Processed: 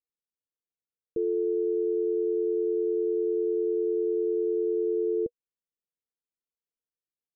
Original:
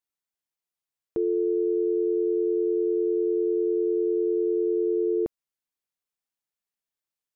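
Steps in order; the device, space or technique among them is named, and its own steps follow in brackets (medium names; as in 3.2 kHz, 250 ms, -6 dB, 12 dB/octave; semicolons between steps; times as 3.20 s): under water (low-pass 470 Hz 24 dB/octave; peaking EQ 480 Hz +10.5 dB 0.25 oct); trim -4.5 dB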